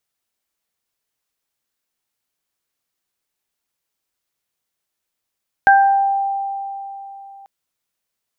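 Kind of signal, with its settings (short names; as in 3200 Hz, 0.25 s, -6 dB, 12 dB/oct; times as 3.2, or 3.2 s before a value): additive tone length 1.79 s, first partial 789 Hz, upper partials -1 dB, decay 3.46 s, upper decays 0.59 s, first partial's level -7.5 dB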